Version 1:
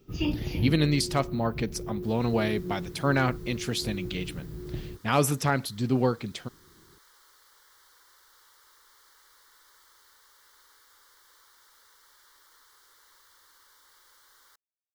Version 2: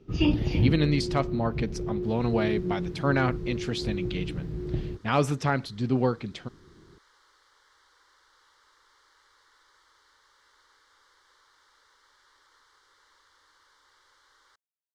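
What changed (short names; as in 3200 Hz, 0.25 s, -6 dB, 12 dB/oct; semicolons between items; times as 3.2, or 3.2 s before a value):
first sound +5.5 dB; master: add air absorption 98 m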